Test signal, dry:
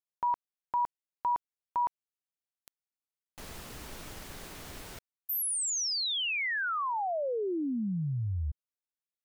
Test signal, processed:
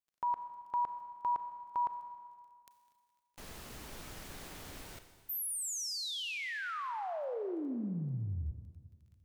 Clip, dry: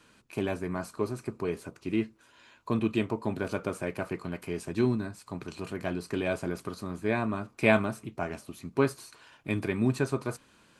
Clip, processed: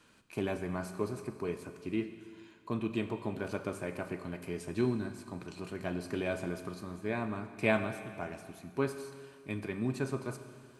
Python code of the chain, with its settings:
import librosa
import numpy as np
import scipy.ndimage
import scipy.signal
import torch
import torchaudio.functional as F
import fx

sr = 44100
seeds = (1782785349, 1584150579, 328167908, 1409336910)

y = fx.rider(x, sr, range_db=4, speed_s=2.0)
y = fx.dmg_crackle(y, sr, seeds[0], per_s=13.0, level_db=-52.0)
y = fx.rev_schroeder(y, sr, rt60_s=2.0, comb_ms=30, drr_db=9.0)
y = F.gain(torch.from_numpy(y), -6.5).numpy()